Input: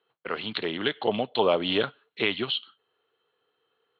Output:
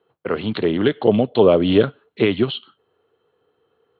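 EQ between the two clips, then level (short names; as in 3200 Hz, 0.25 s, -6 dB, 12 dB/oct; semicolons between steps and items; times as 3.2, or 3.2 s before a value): tilt shelf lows +8.5 dB, about 1100 Hz; dynamic EQ 850 Hz, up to -7 dB, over -36 dBFS, Q 2; bell 83 Hz +5.5 dB 0.77 oct; +6.0 dB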